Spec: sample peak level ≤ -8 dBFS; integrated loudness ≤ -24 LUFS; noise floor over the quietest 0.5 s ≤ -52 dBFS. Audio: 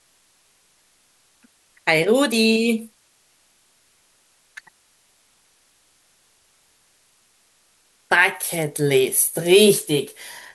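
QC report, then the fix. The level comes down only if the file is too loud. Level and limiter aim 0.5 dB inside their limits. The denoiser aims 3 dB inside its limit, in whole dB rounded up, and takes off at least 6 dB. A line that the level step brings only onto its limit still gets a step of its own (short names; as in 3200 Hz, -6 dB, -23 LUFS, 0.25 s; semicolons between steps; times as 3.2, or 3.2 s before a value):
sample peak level -3.0 dBFS: fail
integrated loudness -18.0 LUFS: fail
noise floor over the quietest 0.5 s -61 dBFS: OK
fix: gain -6.5 dB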